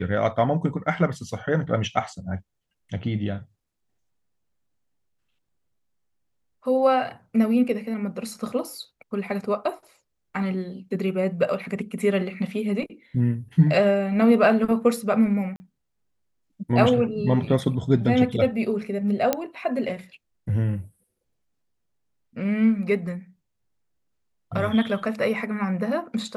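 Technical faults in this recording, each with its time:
15.56–15.60 s: dropout 40 ms
19.33 s: pop -7 dBFS

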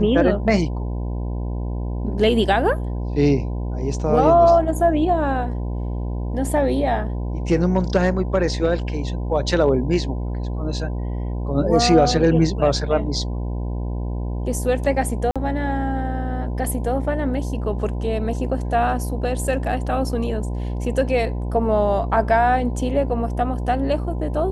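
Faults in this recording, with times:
buzz 60 Hz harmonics 17 -25 dBFS
15.31–15.36 s: dropout 46 ms

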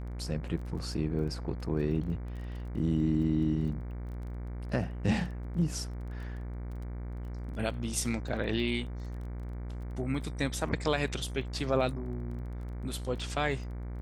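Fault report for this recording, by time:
buzz 60 Hz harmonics 39 -38 dBFS
crackle 18 per s -42 dBFS

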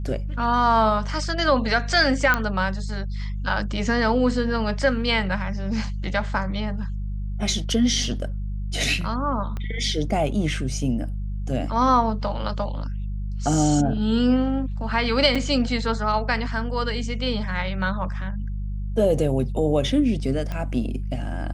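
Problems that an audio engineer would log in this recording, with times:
hum 50 Hz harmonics 4 -28 dBFS
2.34 s: pop -7 dBFS
9.57 s: pop -19 dBFS
15.35–15.36 s: dropout 5.2 ms
20.52 s: pop -17 dBFS

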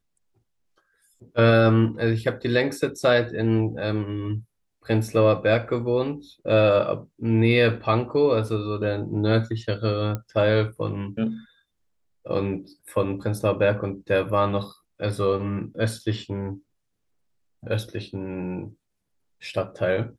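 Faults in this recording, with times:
10.15 s: pop -16 dBFS

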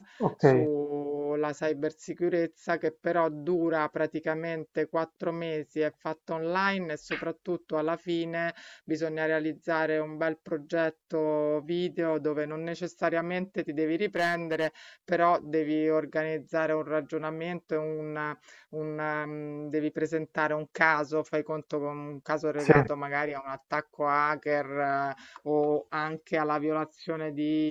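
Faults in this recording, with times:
14.16–14.67 s: clipped -22 dBFS

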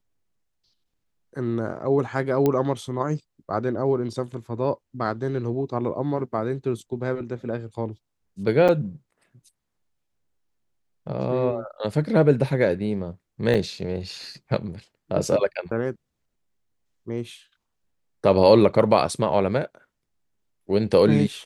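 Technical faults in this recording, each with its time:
2.46 s: pop -10 dBFS
8.68–8.69 s: dropout 6.5 ms
13.54–13.55 s: dropout 6.4 ms

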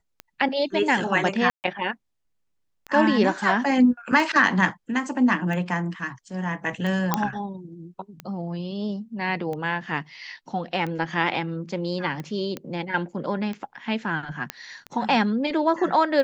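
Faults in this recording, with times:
tick 45 rpm -20 dBFS
1.50–1.64 s: dropout 139 ms
7.14 s: pop -6 dBFS
12.57 s: pop -17 dBFS
14.50 s: pop -11 dBFS

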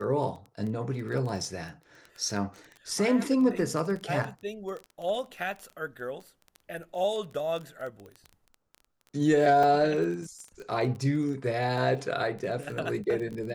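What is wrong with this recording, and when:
crackle 17 per s -34 dBFS
9.63 s: dropout 4.1 ms

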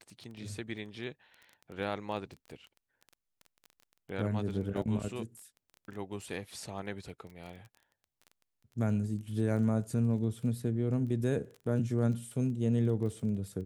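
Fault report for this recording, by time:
crackle 14 per s -41 dBFS

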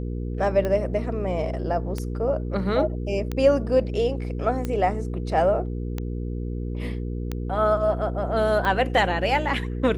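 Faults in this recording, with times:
hum 60 Hz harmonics 8 -29 dBFS
tick 45 rpm -15 dBFS

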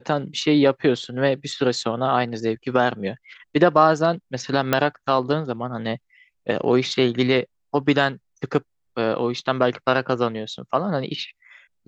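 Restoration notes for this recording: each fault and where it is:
4.73 s: pop -4 dBFS

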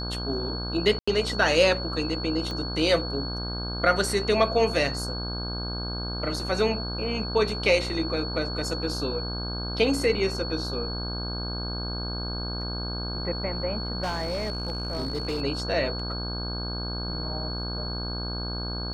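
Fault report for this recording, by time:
buzz 60 Hz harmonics 27 -33 dBFS
whine 4.4 kHz -34 dBFS
0.99–1.07 s: dropout 85 ms
2.51 s: pop -21 dBFS
14.03–15.42 s: clipped -24.5 dBFS

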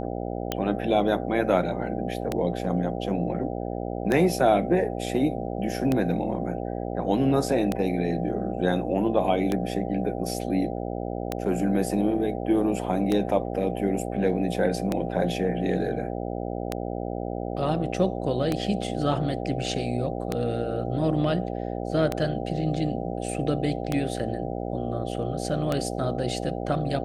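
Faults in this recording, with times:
buzz 60 Hz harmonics 13 -31 dBFS
tick 33 1/3 rpm -11 dBFS

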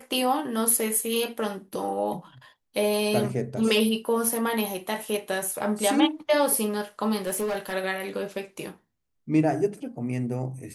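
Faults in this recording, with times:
7.25–7.74 s: clipped -24 dBFS

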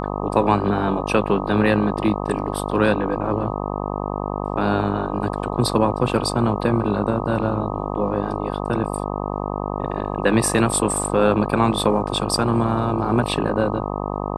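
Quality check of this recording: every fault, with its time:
buzz 50 Hz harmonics 25 -26 dBFS

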